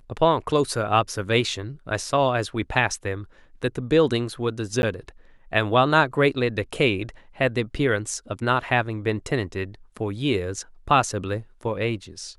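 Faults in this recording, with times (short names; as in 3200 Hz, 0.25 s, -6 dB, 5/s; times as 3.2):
4.82–4.83 gap 11 ms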